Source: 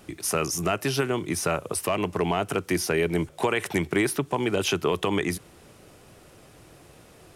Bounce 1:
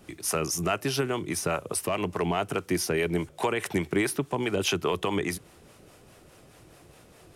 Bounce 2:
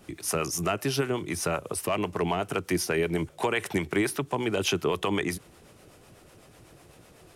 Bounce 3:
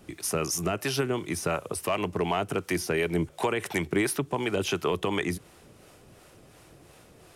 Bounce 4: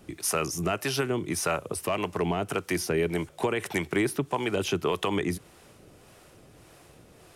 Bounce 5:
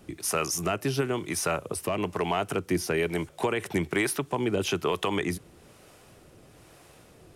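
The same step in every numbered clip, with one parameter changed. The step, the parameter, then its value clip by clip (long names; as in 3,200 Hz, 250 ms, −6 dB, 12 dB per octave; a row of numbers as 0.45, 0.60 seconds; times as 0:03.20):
two-band tremolo in antiphase, speed: 4.8, 8, 2.8, 1.7, 1.1 Hertz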